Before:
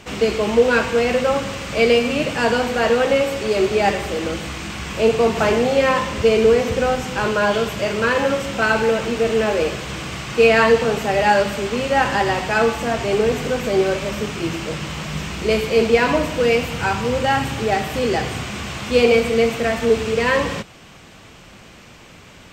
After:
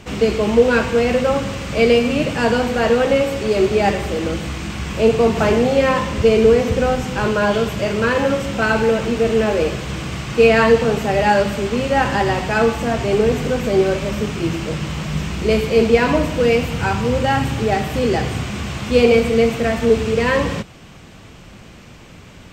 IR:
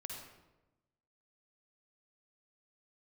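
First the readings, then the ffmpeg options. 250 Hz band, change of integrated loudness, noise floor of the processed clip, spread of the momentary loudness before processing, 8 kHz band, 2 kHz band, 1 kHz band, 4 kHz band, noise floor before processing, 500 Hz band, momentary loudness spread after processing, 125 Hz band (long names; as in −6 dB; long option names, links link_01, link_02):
+4.0 dB, +1.5 dB, −41 dBFS, 10 LU, −1.0 dB, −1.0 dB, 0.0 dB, −1.0 dB, −44 dBFS, +1.5 dB, 10 LU, +5.5 dB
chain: -af "lowshelf=frequency=330:gain=7.5,volume=-1dB"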